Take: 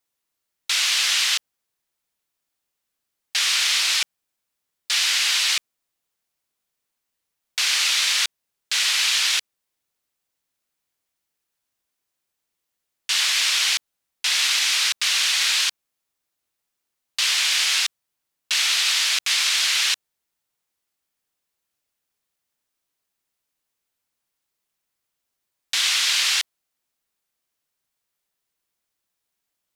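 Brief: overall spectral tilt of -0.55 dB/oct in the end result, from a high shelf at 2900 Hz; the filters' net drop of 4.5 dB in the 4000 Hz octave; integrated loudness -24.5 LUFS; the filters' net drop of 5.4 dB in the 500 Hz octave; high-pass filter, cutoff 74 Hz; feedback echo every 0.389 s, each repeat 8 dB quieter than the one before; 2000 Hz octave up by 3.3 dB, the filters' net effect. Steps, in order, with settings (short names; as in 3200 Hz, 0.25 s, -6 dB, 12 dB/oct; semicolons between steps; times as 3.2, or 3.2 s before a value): HPF 74 Hz; bell 500 Hz -8 dB; bell 2000 Hz +8 dB; high shelf 2900 Hz -4.5 dB; bell 4000 Hz -5 dB; feedback echo 0.389 s, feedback 40%, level -8 dB; gain -3 dB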